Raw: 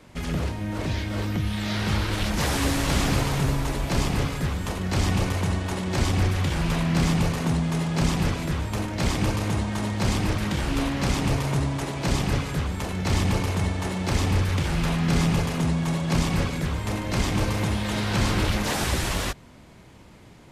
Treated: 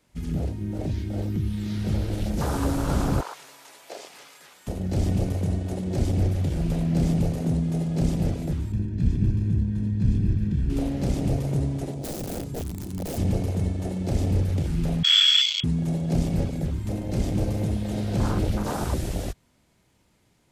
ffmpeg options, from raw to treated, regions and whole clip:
-filter_complex "[0:a]asettb=1/sr,asplit=3[a][b][c];[a]atrim=end=3.214[d];[b]atrim=start=3.21:end=4.67,asetpts=PTS-STARTPTS,afade=t=in:d=0.004:c=qsin,afade=t=out:st=1.456:d=0.004:c=qsin,acrossover=split=7000[e][f];[f]acompressor=threshold=-46dB:ratio=4:attack=1:release=60[g];[e][g]amix=inputs=2:normalize=0,highpass=630[h];[c]atrim=start=4.666[i];[d][h]acrossfade=d=0.004:c1=hsin:c2=qsin[j];[j][i]acrossfade=d=0.004:c1=qsin:c2=hsin,asettb=1/sr,asplit=3[k][l][m];[k]atrim=end=8.724[n];[l]atrim=start=8.72:end=10.7,asetpts=PTS-STARTPTS,afade=t=in:d=0.004:c=qsin,afade=t=out:st=1.976:d=0.004:c=qsin,lowpass=f=1.2k:p=1,equalizer=f=830:w=2:g=-14,aecho=1:1:1.2:0.65,atrim=end_sample=87318[o];[m]atrim=start=10.696[p];[n][o]acrossfade=d=0.004:c1=hsin:c2=qsin[q];[q][p]acrossfade=d=0.004:c1=qsin:c2=hsin,asettb=1/sr,asplit=3[r][s][t];[r]atrim=end=11.944[u];[s]atrim=start=11.94:end=13.18,asetpts=PTS-STARTPTS,afade=t=in:d=0.004:c=qsin,afade=t=out:st=1.236:d=0.004:c=qsin,highpass=73,equalizer=f=2.1k:w=0.71:g=-9,aeval=exprs='(mod(14.1*val(0)+1,2)-1)/14.1':c=same[v];[t]atrim=start=13.176[w];[u][v]acrossfade=d=0.004:c1=hsin:c2=qsin[x];[x][w]acrossfade=d=0.004:c1=qsin:c2=hsin,asettb=1/sr,asplit=3[y][z][aa];[y]atrim=end=15.034[ab];[z]atrim=start=15.03:end=15.64,asetpts=PTS-STARTPTS,afade=t=in:d=0.004:c=qsin,afade=t=out:st=0.606:d=0.004:c=qsin,lowpass=f=3k:t=q:w=0.5098,lowpass=f=3k:t=q:w=0.6013,lowpass=f=3k:t=q:w=0.9,lowpass=f=3k:t=q:w=2.563,afreqshift=-3500,asuperstop=centerf=800:order=20:qfactor=3.1[ac];[aa]atrim=start=15.636[ad];[ab][ac]acrossfade=d=0.004:c1=hsin:c2=qsin[ae];[ae][ad]acrossfade=d=0.004:c1=qsin:c2=hsin,afwtdn=0.0562,highshelf=f=4.7k:g=11,bandreject=f=1.1k:w=21"

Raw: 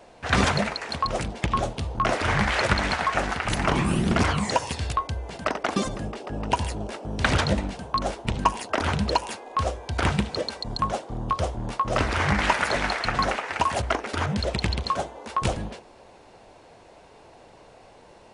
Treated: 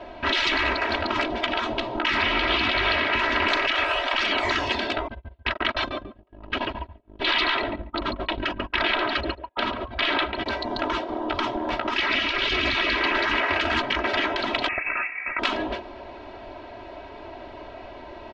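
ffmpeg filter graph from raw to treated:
-filter_complex "[0:a]asettb=1/sr,asplit=3[a][b][c];[a]atrim=end=2.214[d];[b]atrim=start=2.21:end=3.19,asetpts=PTS-STARTPTS,afade=t=in:d=0.004:c=qsin,afade=t=out:st=0.976:d=0.004:c=qsin,acrossover=split=160 5800:gain=0.224 1 0.112[e][f][g];[e][f][g]amix=inputs=3:normalize=0,bandreject=f=63.9:t=h:w=4,bandreject=f=127.8:t=h:w=4,bandreject=f=191.7:t=h:w=4,bandreject=f=255.6:t=h:w=4,bandreject=f=319.5:t=h:w=4,bandreject=f=383.4:t=h:w=4,bandreject=f=447.3:t=h:w=4,bandreject=f=511.2:t=h:w=4,bandreject=f=575.1:t=h:w=4,bandreject=f=639:t=h:w=4,bandreject=f=702.9:t=h:w=4,bandreject=f=766.8:t=h:w=4,bandreject=f=830.7:t=h:w=4,bandreject=f=894.6:t=h:w=4,bandreject=f=958.5:t=h:w=4,bandreject=f=1.0224k:t=h:w=4,bandreject=f=1.0863k:t=h:w=4,bandreject=f=1.1502k:t=h:w=4,bandreject=f=1.2141k:t=h:w=4,bandreject=f=1.278k:t=h:w=4,bandreject=f=1.3419k:t=h:w=4,bandreject=f=1.4058k:t=h:w=4,bandreject=f=1.4697k:t=h:w=4,bandreject=f=1.5336k:t=h:w=4,bandreject=f=1.5975k:t=h:w=4,bandreject=f=1.6614k:t=h:w=4,bandreject=f=1.7253k:t=h:w=4,bandreject=f=1.7892k:t=h:w=4,bandreject=f=1.8531k:t=h:w=4,bandreject=f=1.917k:t=h:w=4,bandreject=f=1.9809k:t=h:w=4,bandreject=f=2.0448k:t=h:w=4,bandreject=f=2.1087k:t=h:w=4,bandreject=f=2.1726k:t=h:w=4,bandreject=f=2.2365k:t=h:w=4,bandreject=f=2.3004k:t=h:w=4,bandreject=f=2.3643k:t=h:w=4,bandreject=f=2.4282k:t=h:w=4[h];[c]atrim=start=3.186[i];[d][h]acrossfade=d=0.004:c1=hsin:c2=qsin[j];[j][i]acrossfade=d=0.004:c1=qsin:c2=hsin,asettb=1/sr,asplit=3[k][l][m];[k]atrim=end=5.084[n];[l]atrim=start=5.08:end=10.46,asetpts=PTS-STARTPTS,afade=t=in:d=0.004:c=qsin,afade=t=out:st=5.376:d=0.004:c=qsin,highshelf=f=5.2k:t=q:w=1.5:g=-8.5,agate=range=-46dB:threshold=-27dB:ratio=16:release=100:detection=peak,asplit=2[o][p];[p]adelay=141,lowpass=f=2k:p=1,volume=-8dB,asplit=2[q][r];[r]adelay=141,lowpass=f=2k:p=1,volume=0.15[s];[o][q][s]amix=inputs=3:normalize=0,atrim=end_sample=237258[t];[m]atrim=start=10.456[u];[n][t]acrossfade=d=0.004:c1=hsin:c2=qsin[v];[v][u]acrossfade=d=0.004:c1=qsin:c2=hsin,asettb=1/sr,asplit=3[w][x][y];[w]atrim=end=11.984[z];[x]atrim=start=11.98:end=13.07,asetpts=PTS-STARTPTS,afade=t=in:d=0.004:c=qsin,afade=t=out:st=1.086:d=0.004:c=qsin,lowpass=f=7.2k:w=0.5412,lowpass=f=7.2k:w=1.3066,equalizer=f=780:t=o:w=2.1:g=4[aa];[y]atrim=start=13.066[ab];[z][aa]acrossfade=d=0.004:c1=hsin:c2=qsin[ac];[ac][ab]acrossfade=d=0.004:c1=qsin:c2=hsin,asettb=1/sr,asplit=3[ad][ae][af];[ad]atrim=end=14.684[ag];[ae]atrim=start=14.68:end=15.39,asetpts=PTS-STARTPTS,afade=t=in:d=0.004:c=qsin,afade=t=out:st=0.706:d=0.004:c=qsin,aeval=exprs='sgn(val(0))*max(abs(val(0))-0.00316,0)':c=same,lowpass=f=2.4k:t=q:w=0.5098,lowpass=f=2.4k:t=q:w=0.6013,lowpass=f=2.4k:t=q:w=0.9,lowpass=f=2.4k:t=q:w=2.563,afreqshift=-2800[ah];[af]atrim=start=15.386[ai];[ag][ah]acrossfade=d=0.004:c1=hsin:c2=qsin[aj];[aj][ai]acrossfade=d=0.004:c1=qsin:c2=hsin,lowpass=f=3.8k:w=0.5412,lowpass=f=3.8k:w=1.3066,afftfilt=real='re*lt(hypot(re,im),0.1)':imag='im*lt(hypot(re,im),0.1)':win_size=1024:overlap=0.75,aecho=1:1:3.1:0.92,volume=8dB"

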